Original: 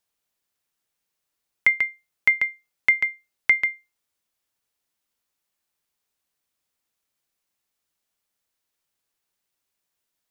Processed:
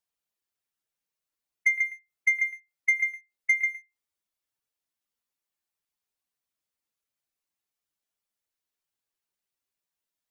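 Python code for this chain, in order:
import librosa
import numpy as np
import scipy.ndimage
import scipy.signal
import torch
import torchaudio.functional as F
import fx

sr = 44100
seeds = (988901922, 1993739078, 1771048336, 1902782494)

y = fx.spec_expand(x, sr, power=1.5)
y = y + 10.0 ** (-17.0 / 20.0) * np.pad(y, (int(112 * sr / 1000.0), 0))[:len(y)]
y = fx.leveller(y, sr, passes=1)
y = y * librosa.db_to_amplitude(-6.5)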